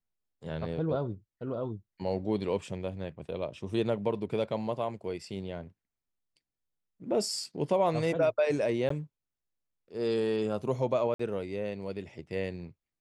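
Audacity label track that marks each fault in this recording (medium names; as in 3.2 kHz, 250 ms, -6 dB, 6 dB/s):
8.890000	8.900000	dropout 14 ms
11.140000	11.190000	dropout 54 ms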